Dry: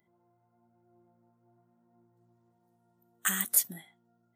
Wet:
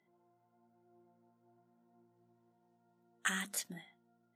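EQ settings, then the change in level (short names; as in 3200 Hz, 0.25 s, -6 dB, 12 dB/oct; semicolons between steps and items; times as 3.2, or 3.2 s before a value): BPF 150–5100 Hz; notches 50/100/150/200 Hz; notch 1200 Hz, Q 16; -1.5 dB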